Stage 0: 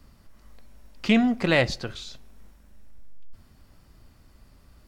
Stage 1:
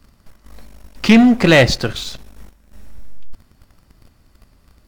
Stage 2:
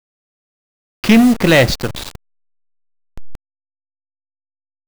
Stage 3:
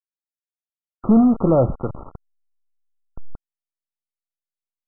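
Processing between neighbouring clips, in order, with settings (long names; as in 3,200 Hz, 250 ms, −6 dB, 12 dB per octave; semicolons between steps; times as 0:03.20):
leveller curve on the samples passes 2; level +5.5 dB
hold until the input has moved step −20.5 dBFS
linear-phase brick-wall low-pass 1,400 Hz; level −4 dB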